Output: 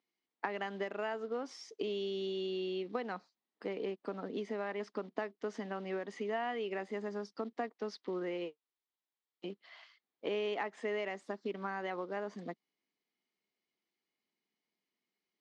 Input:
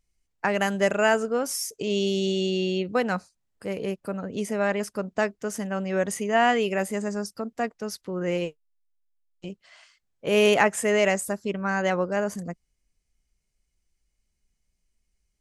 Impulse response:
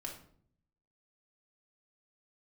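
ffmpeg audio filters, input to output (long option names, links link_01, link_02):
-af "acrusher=bits=6:mode=log:mix=0:aa=0.000001,acompressor=threshold=-31dB:ratio=10,highpass=frequency=250:width=0.5412,highpass=frequency=250:width=1.3066,equalizer=frequency=570:width_type=q:width=4:gain=-7,equalizer=frequency=1500:width_type=q:width=4:gain=-6,equalizer=frequency=2600:width_type=q:width=4:gain=-6,lowpass=frequency=4000:width=0.5412,lowpass=frequency=4000:width=1.3066"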